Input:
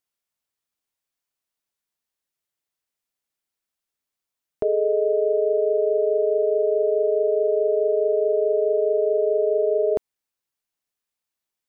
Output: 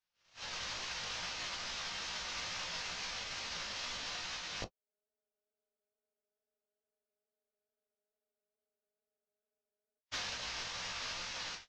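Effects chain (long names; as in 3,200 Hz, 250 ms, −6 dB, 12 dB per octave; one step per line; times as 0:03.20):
linear delta modulator 32 kbit/s, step −39 dBFS
gate with flip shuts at −23 dBFS, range −37 dB
automatic gain control gain up to 16 dB
parametric band 280 Hz −9 dB 1.3 octaves
reverb whose tail is shaped and stops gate 90 ms falling, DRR 4.5 dB
downward compressor 6 to 1, threshold −37 dBFS, peak gain reduction 17 dB
chorus effect 2.3 Hz, delay 16 ms, depth 3.6 ms
noise gate −41 dBFS, range −48 dB
soft clipping −30.5 dBFS, distortion −27 dB
level +4 dB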